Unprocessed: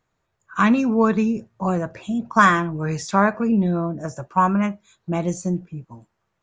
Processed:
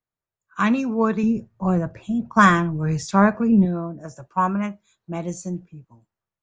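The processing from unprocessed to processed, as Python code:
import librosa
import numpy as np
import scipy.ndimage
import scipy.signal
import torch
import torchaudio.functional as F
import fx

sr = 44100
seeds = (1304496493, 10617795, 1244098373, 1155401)

y = fx.low_shelf(x, sr, hz=210.0, db=10.5, at=(1.23, 3.65))
y = fx.band_widen(y, sr, depth_pct=40)
y = y * librosa.db_to_amplitude(-3.0)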